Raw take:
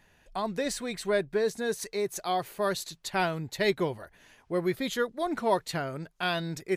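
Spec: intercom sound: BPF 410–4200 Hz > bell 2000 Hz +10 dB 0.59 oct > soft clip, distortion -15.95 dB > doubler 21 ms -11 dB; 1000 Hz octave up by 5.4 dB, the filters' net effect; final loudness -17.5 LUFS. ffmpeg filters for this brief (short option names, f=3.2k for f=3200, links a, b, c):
-filter_complex "[0:a]highpass=410,lowpass=4.2k,equalizer=f=1k:t=o:g=6.5,equalizer=f=2k:t=o:w=0.59:g=10,asoftclip=threshold=-16dB,asplit=2[a][b];[b]adelay=21,volume=-11dB[c];[a][c]amix=inputs=2:normalize=0,volume=12dB"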